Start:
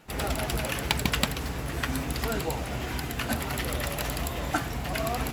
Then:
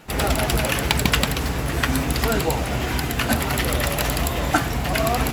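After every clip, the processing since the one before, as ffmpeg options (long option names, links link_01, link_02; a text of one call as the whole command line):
ffmpeg -i in.wav -af "alimiter=level_in=9.5dB:limit=-1dB:release=50:level=0:latency=1,volume=-1dB" out.wav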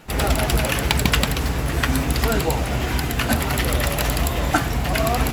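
ffmpeg -i in.wav -af "lowshelf=frequency=68:gain=5.5" out.wav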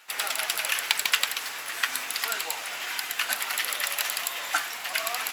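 ffmpeg -i in.wav -af "highpass=1400,volume=-1.5dB" out.wav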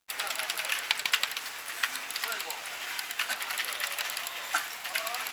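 ffmpeg -i in.wav -filter_complex "[0:a]acrossover=split=6100[link_01][link_02];[link_02]alimiter=limit=-18.5dB:level=0:latency=1:release=203[link_03];[link_01][link_03]amix=inputs=2:normalize=0,aeval=exprs='sgn(val(0))*max(abs(val(0))-0.00376,0)':channel_layout=same,volume=-2.5dB" out.wav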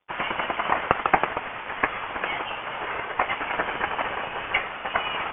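ffmpeg -i in.wav -af "aexciter=amount=2.3:drive=4.6:freq=2500,lowpass=frequency=3100:width_type=q:width=0.5098,lowpass=frequency=3100:width_type=q:width=0.6013,lowpass=frequency=3100:width_type=q:width=0.9,lowpass=frequency=3100:width_type=q:width=2.563,afreqshift=-3600,volume=5dB" out.wav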